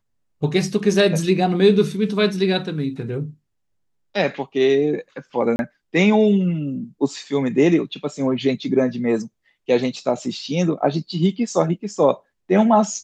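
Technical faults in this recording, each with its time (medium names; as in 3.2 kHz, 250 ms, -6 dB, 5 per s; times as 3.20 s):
5.56–5.59 s: dropout 31 ms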